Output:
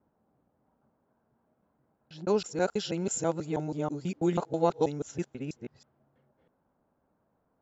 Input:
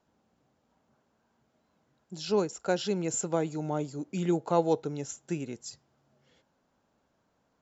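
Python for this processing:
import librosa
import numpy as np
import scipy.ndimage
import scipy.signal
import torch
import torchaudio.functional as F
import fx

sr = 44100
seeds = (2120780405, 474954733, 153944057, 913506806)

y = fx.local_reverse(x, sr, ms=162.0)
y = fx.env_lowpass(y, sr, base_hz=1200.0, full_db=-25.0)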